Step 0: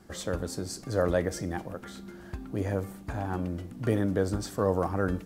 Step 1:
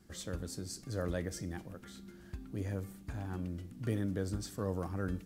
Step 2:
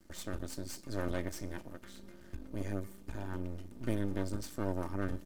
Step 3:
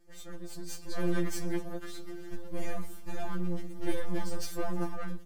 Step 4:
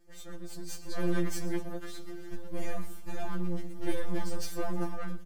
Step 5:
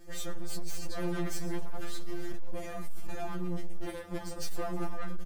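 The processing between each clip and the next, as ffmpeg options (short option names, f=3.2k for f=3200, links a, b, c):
-af "equalizer=f=760:t=o:w=2.1:g=-9.5,volume=-5dB"
-af "aeval=exprs='max(val(0),0)':c=same,aecho=1:1:3.3:0.41,volume=2.5dB"
-filter_complex "[0:a]dynaudnorm=f=230:g=7:m=12.5dB,asplit=2[a][b];[b]volume=22.5dB,asoftclip=hard,volume=-22.5dB,volume=-3dB[c];[a][c]amix=inputs=2:normalize=0,afftfilt=real='re*2.83*eq(mod(b,8),0)':imag='im*2.83*eq(mod(b,8),0)':win_size=2048:overlap=0.75,volume=-7.5dB"
-af "aecho=1:1:119:0.126"
-filter_complex "[0:a]aeval=exprs='(tanh(14.1*val(0)+0.5)-tanh(0.5))/14.1':c=same,asplit=2[a][b];[b]adelay=19,volume=-10.5dB[c];[a][c]amix=inputs=2:normalize=0,aeval=exprs='0.0501*sin(PI/2*2.24*val(0)/0.0501)':c=same,volume=3dB"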